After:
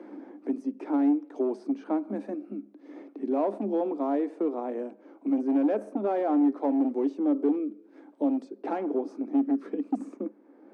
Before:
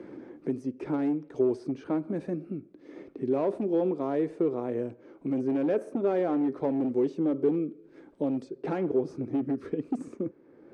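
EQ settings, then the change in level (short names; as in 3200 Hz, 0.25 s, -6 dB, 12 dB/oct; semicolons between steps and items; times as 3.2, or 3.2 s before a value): rippled Chebyshev high-pass 200 Hz, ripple 9 dB; +5.5 dB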